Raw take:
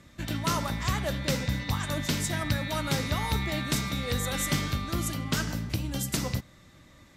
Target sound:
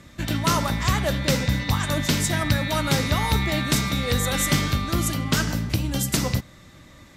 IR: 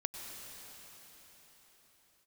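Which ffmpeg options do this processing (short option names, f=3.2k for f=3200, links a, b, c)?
-af "acontrast=72"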